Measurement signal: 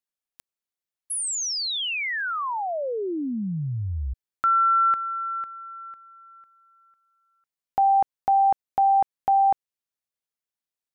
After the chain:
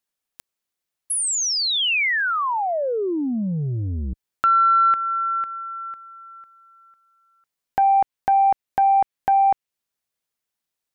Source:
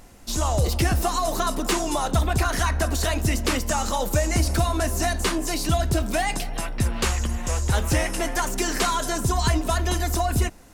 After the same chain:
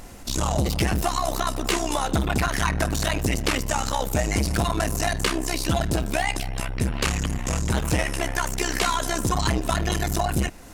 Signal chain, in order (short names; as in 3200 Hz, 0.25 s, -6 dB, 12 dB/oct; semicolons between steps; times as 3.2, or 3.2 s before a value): dynamic EQ 2400 Hz, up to +4 dB, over -43 dBFS, Q 1.2; in parallel at +2 dB: compressor, threshold -31 dBFS; on the sum: core saturation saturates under 380 Hz